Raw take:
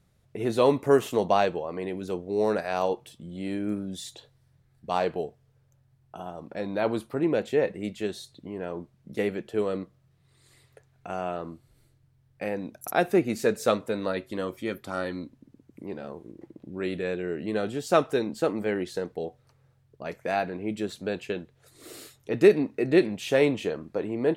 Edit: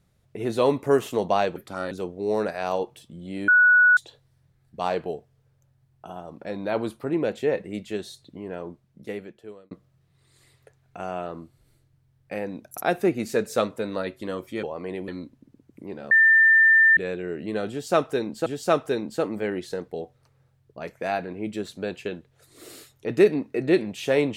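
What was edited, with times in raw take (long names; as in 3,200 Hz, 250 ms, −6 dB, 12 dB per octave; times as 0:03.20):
0:01.56–0:02.01: swap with 0:14.73–0:15.08
0:03.58–0:04.07: beep over 1,470 Hz −12.5 dBFS
0:08.63–0:09.81: fade out
0:16.11–0:16.97: beep over 1,790 Hz −12.5 dBFS
0:17.70–0:18.46: repeat, 2 plays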